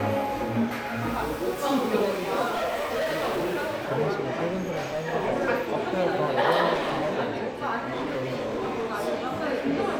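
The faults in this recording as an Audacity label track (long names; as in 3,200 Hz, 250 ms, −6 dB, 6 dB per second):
2.480000	3.910000	clipping −24 dBFS
4.500000	5.020000	clipping −25 dBFS
6.730000	7.160000	clipping −23.5 dBFS
7.870000	8.920000	clipping −25.5 dBFS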